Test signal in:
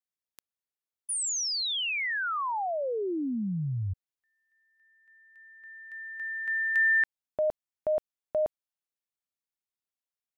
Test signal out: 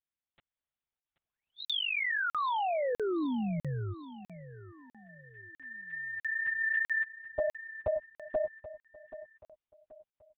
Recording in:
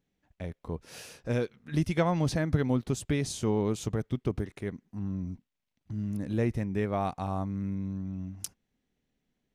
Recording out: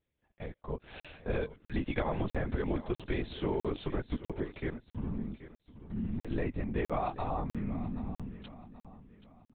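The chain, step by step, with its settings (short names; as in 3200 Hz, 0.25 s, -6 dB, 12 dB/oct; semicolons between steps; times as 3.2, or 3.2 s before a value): AGC gain up to 4.5 dB; HPF 60 Hz 6 dB/oct; low shelf 140 Hz -9.5 dB; LPC vocoder at 8 kHz whisper; compressor 6:1, threshold -26 dBFS; air absorption 56 m; feedback echo 0.78 s, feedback 38%, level -15 dB; crackling interface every 0.65 s, samples 2048, zero, from 1; gain -2 dB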